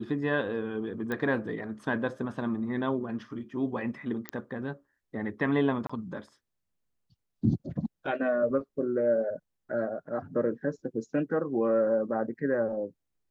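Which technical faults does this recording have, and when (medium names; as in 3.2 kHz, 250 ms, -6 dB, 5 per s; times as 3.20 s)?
1.12 s: pop -20 dBFS
4.29 s: pop -17 dBFS
5.87–5.89 s: dropout 25 ms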